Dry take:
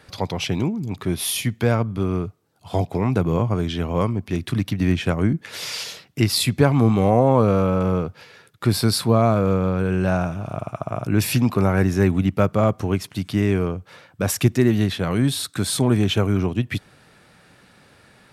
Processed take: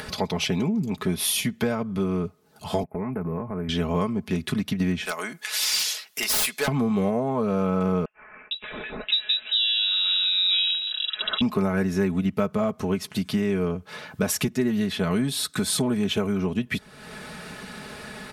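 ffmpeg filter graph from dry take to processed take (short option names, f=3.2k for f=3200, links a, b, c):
-filter_complex "[0:a]asettb=1/sr,asplit=3[a][b][c];[a]atrim=end=2.834[d];[b]atrim=start=2.83:end=3.69,asetpts=PTS-STARTPTS,afade=t=in:d=0.004:c=qsin,afade=t=out:st=0.856:d=0.004:c=qsin,agate=range=-16dB:threshold=-28dB:ratio=16:release=100:detection=peak,acompressor=threshold=-28dB:ratio=4:attack=3.2:release=140:knee=1:detection=peak,asuperstop=centerf=5100:order=8:qfactor=0.63[e];[c]atrim=start=3.686[f];[d][e]acrossfade=d=0.004:c1=hsin:c2=qsin[g];[g][f]acrossfade=d=0.004:c1=qsin:c2=hsin,asettb=1/sr,asplit=3[h][i][j];[h]atrim=end=5.054[k];[i]atrim=start=5.05:end=6.68,asetpts=PTS-STARTPTS,afade=t=in:d=0.004:c=qsin,afade=t=out:st=1.626:d=0.004:c=qsin,highpass=830,highshelf=f=4.5k:g=11.5,aeval=exprs='0.133*(abs(mod(val(0)/0.133+3,4)-2)-1)':c=same[l];[j]atrim=start=6.676[m];[k][l]acrossfade=d=0.004:c1=hsin:c2=qsin[n];[n][m]acrossfade=d=0.004:c1=qsin:c2=hsin,asettb=1/sr,asplit=3[o][p][q];[o]atrim=end=8.054[r];[p]atrim=start=8.05:end=11.41,asetpts=PTS-STARTPTS,afade=t=in:d=0.004:c=qsin,afade=t=out:st=3.356:d=0.004:c=qsin,lowshelf=f=330:g=-3.5,acrossover=split=2100[s][t];[s]adelay=460[u];[u][t]amix=inputs=2:normalize=0,atrim=end_sample=148176,lowpass=f=3.4k:t=q:w=0.5098,lowpass=f=3.4k:t=q:w=0.6013,lowpass=f=3.4k:t=q:w=0.9,lowpass=f=3.4k:t=q:w=2.563,afreqshift=-4000[v];[q]atrim=start=11.406[w];[r][v]acrossfade=d=0.004:c1=hsin:c2=qsin[x];[x][w]acrossfade=d=0.004:c1=qsin:c2=hsin,acompressor=threshold=-22dB:ratio=4,aecho=1:1:4.7:0.72,acompressor=mode=upward:threshold=-27dB:ratio=2.5"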